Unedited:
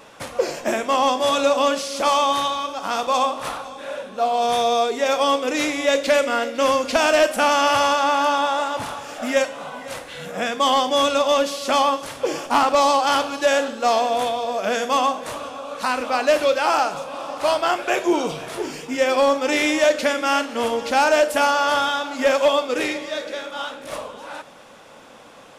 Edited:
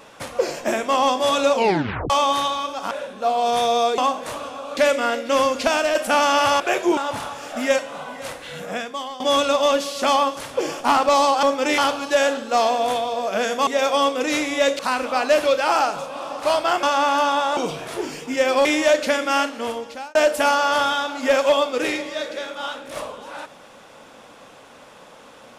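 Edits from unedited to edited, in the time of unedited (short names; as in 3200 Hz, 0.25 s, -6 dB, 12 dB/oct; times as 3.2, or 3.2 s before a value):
1.53 tape stop 0.57 s
2.91–3.87 cut
4.94–6.06 swap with 14.98–15.77
6.89–7.24 fade out, to -6.5 dB
7.89–8.63 swap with 17.81–18.18
10.32–10.86 fade out quadratic, to -16.5 dB
19.26–19.61 move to 13.09
20.33–21.11 fade out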